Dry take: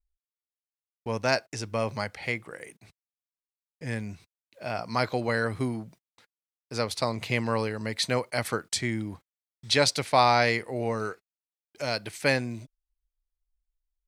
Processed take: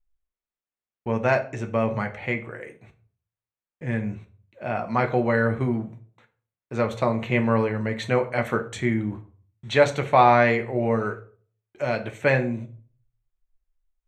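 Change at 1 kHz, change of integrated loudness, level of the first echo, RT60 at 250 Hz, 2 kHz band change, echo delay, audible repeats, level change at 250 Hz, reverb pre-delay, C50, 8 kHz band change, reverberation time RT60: +4.5 dB, +4.0 dB, no echo, 0.55 s, +3.0 dB, no echo, no echo, +6.5 dB, 5 ms, 14.0 dB, -10.5 dB, 0.45 s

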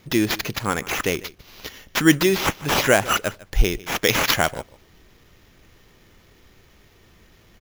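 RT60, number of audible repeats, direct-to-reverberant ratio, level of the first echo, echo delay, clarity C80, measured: no reverb, 1, no reverb, -20.0 dB, 150 ms, no reverb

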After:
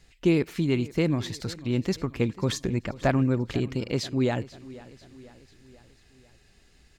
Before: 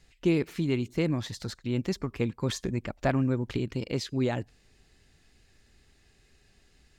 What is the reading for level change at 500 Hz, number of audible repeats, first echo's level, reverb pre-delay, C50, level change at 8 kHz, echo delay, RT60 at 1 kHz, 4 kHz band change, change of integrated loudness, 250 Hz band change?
+3.0 dB, 3, -19.0 dB, no reverb, no reverb, +3.0 dB, 491 ms, no reverb, +3.0 dB, +3.0 dB, +3.0 dB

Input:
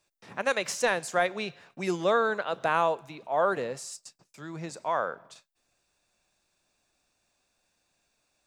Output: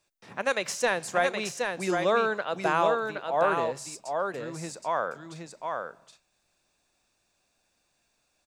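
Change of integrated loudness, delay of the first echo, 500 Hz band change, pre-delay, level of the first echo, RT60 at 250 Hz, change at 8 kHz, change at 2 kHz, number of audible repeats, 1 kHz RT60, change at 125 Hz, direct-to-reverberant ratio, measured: +0.5 dB, 770 ms, +1.5 dB, no reverb, -4.5 dB, no reverb, +1.5 dB, +1.5 dB, 1, no reverb, +1.0 dB, no reverb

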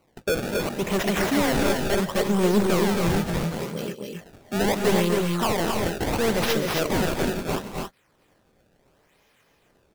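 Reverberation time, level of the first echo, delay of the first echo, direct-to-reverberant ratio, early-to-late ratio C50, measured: no reverb, -16.0 dB, 136 ms, no reverb, no reverb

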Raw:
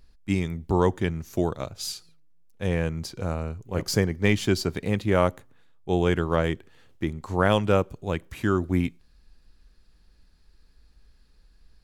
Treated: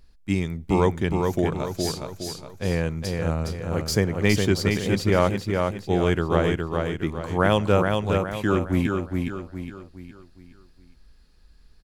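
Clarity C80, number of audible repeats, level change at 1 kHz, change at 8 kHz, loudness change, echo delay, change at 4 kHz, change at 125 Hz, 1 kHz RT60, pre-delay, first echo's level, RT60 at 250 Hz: no reverb, 5, +2.5 dB, +2.5 dB, +2.0 dB, 414 ms, +2.5 dB, +2.5 dB, no reverb, no reverb, -4.0 dB, no reverb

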